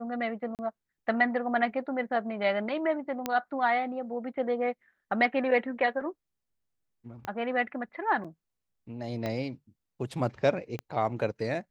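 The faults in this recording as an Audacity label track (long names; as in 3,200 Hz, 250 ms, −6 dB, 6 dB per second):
0.550000	0.590000	drop-out 38 ms
3.260000	3.260000	click −14 dBFS
7.250000	7.250000	click −22 dBFS
8.240000	8.250000	drop-out 6.1 ms
9.260000	9.260000	click −20 dBFS
10.790000	10.790000	click −22 dBFS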